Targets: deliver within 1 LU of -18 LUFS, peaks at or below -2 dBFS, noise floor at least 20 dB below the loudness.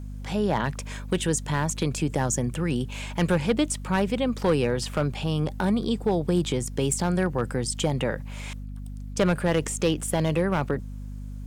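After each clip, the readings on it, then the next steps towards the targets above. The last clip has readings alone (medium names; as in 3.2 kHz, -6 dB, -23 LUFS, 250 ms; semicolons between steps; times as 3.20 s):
clipped samples 0.5%; clipping level -14.5 dBFS; hum 50 Hz; highest harmonic 250 Hz; hum level -33 dBFS; loudness -26.0 LUFS; peak level -14.5 dBFS; loudness target -18.0 LUFS
-> clip repair -14.5 dBFS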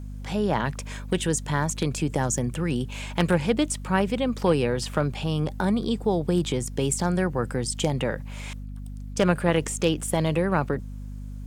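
clipped samples 0.0%; hum 50 Hz; highest harmonic 250 Hz; hum level -33 dBFS
-> hum notches 50/100/150/200/250 Hz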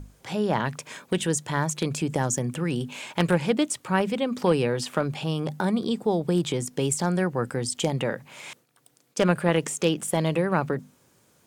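hum not found; loudness -26.0 LUFS; peak level -6.0 dBFS; loudness target -18.0 LUFS
-> trim +8 dB; peak limiter -2 dBFS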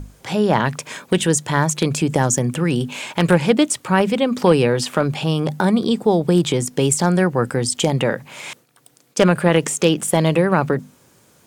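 loudness -18.5 LUFS; peak level -2.0 dBFS; noise floor -55 dBFS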